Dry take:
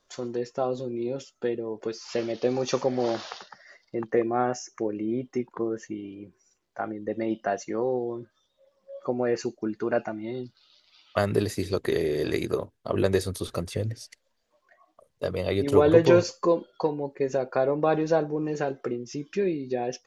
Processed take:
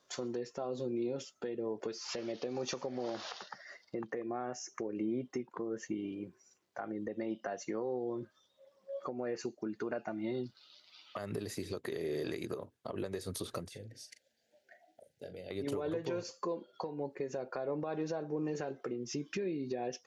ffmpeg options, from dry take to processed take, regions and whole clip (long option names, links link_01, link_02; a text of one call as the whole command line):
ffmpeg -i in.wav -filter_complex "[0:a]asettb=1/sr,asplit=3[link_01][link_02][link_03];[link_01]atrim=end=13.684[link_04];[link_02]atrim=start=13.68:end=15.51,asetpts=PTS-STARTPTS,afade=type=in:duration=0.004:curve=qsin,afade=type=out:start_time=1.826:duration=0.004:curve=qsin,acompressor=threshold=-49dB:ratio=3:attack=3.2:release=140:knee=1:detection=peak,asuperstop=centerf=1100:order=8:qfactor=1.8,asplit=2[link_05][link_06];[link_06]adelay=40,volume=-10.5dB[link_07];[link_05][link_07]amix=inputs=2:normalize=0,atrim=end_sample=80703[link_08];[link_03]atrim=start=15.506[link_09];[link_04][link_08]acrossfade=duration=0.004:curve1=hsin:curve2=qsin[link_10];[link_10][link_09]acrossfade=duration=0.004:curve1=qsin:curve2=hsin,highpass=110,acompressor=threshold=-32dB:ratio=4,alimiter=level_in=3dB:limit=-24dB:level=0:latency=1:release=182,volume=-3dB" out.wav